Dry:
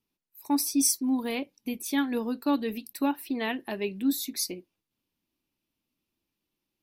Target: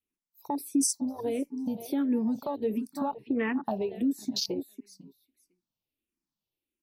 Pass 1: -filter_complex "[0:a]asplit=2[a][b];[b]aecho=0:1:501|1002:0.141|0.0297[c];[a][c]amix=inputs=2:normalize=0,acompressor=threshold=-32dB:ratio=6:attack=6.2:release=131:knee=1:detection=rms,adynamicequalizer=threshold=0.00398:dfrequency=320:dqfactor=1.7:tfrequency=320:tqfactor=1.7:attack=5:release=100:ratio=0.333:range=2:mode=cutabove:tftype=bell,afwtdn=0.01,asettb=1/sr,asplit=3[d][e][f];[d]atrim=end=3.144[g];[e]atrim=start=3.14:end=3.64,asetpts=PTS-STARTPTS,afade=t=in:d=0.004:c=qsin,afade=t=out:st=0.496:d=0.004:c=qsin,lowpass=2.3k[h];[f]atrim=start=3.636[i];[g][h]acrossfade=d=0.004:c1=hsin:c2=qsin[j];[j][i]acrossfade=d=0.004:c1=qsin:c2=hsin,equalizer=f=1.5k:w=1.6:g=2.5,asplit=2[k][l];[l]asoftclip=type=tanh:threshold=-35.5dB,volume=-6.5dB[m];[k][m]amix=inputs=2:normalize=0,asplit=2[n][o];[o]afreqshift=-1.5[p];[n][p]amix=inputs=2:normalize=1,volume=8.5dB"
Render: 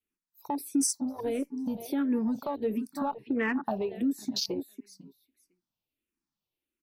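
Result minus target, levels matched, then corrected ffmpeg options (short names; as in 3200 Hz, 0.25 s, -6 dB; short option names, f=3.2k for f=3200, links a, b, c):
soft clip: distortion +16 dB; 2000 Hz band +4.0 dB
-filter_complex "[0:a]asplit=2[a][b];[b]aecho=0:1:501|1002:0.141|0.0297[c];[a][c]amix=inputs=2:normalize=0,acompressor=threshold=-32dB:ratio=6:attack=6.2:release=131:knee=1:detection=rms,adynamicequalizer=threshold=0.00398:dfrequency=320:dqfactor=1.7:tfrequency=320:tqfactor=1.7:attack=5:release=100:ratio=0.333:range=2:mode=cutabove:tftype=bell,afwtdn=0.01,asettb=1/sr,asplit=3[d][e][f];[d]atrim=end=3.144[g];[e]atrim=start=3.14:end=3.64,asetpts=PTS-STARTPTS,afade=t=in:d=0.004:c=qsin,afade=t=out:st=0.496:d=0.004:c=qsin,lowpass=2.3k[h];[f]atrim=start=3.636[i];[g][h]acrossfade=d=0.004:c1=hsin:c2=qsin[j];[j][i]acrossfade=d=0.004:c1=qsin:c2=hsin,equalizer=f=1.5k:w=1.6:g=-4,asplit=2[k][l];[l]asoftclip=type=tanh:threshold=-24.5dB,volume=-6.5dB[m];[k][m]amix=inputs=2:normalize=0,asplit=2[n][o];[o]afreqshift=-1.5[p];[n][p]amix=inputs=2:normalize=1,volume=8.5dB"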